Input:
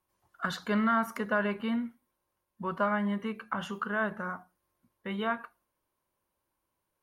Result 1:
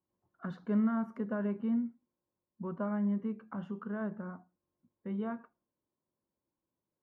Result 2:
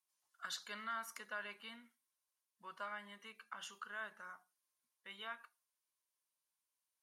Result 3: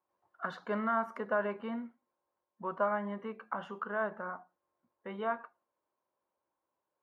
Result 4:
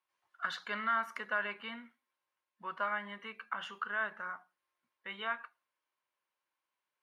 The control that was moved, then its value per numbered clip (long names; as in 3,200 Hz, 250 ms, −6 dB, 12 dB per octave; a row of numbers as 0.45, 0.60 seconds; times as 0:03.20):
resonant band-pass, frequency: 220, 7,000, 670, 2,300 Hertz